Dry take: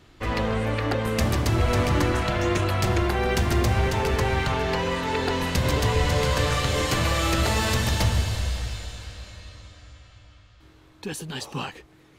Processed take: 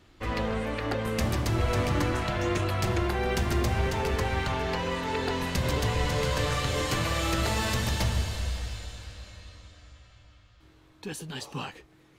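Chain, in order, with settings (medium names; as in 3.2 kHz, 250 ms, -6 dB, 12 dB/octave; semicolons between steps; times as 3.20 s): flange 0.22 Hz, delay 3.4 ms, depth 3.7 ms, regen -78%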